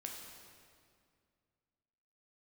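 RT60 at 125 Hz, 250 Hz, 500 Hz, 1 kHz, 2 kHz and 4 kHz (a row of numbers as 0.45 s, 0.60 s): 2.7 s, 2.6 s, 2.3 s, 2.1 s, 1.9 s, 1.7 s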